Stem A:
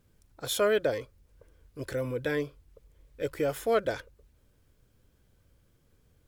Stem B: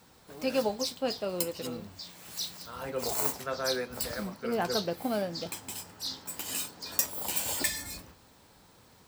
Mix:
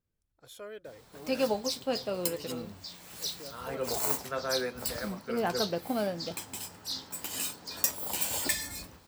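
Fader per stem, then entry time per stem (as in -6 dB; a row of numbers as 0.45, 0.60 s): -19.0, 0.0 dB; 0.00, 0.85 s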